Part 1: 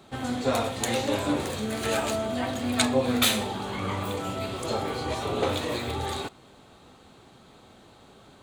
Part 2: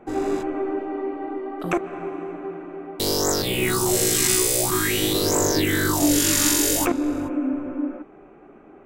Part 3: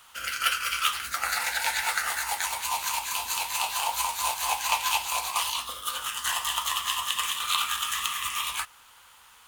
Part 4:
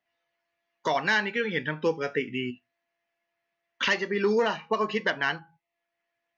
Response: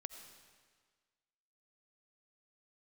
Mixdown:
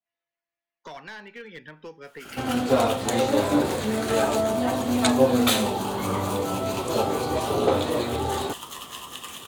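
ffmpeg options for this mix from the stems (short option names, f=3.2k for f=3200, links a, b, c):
-filter_complex "[0:a]equalizer=f=480:w=0.3:g=6.5,adelay=2250,volume=-0.5dB[a];[2:a]adelay=2050,volume=-12dB,asplit=2[b][c];[c]volume=-4dB[d];[3:a]acrossover=split=290|1100|2900[e][f][g][h];[e]acompressor=threshold=-38dB:ratio=4[i];[f]acompressor=threshold=-28dB:ratio=4[j];[g]acompressor=threshold=-30dB:ratio=4[k];[h]acompressor=threshold=-37dB:ratio=4[l];[i][j][k][l]amix=inputs=4:normalize=0,aeval=exprs='clip(val(0),-1,0.0596)':c=same,volume=-12dB,asplit=2[m][n];[n]volume=-16.5dB[o];[4:a]atrim=start_sample=2205[p];[d][o]amix=inputs=2:normalize=0[q];[q][p]afir=irnorm=-1:irlink=0[r];[a][b][m][r]amix=inputs=4:normalize=0,adynamicequalizer=threshold=0.00631:dfrequency=2100:dqfactor=1.4:tfrequency=2100:tqfactor=1.4:attack=5:release=100:ratio=0.375:range=2:mode=cutabove:tftype=bell"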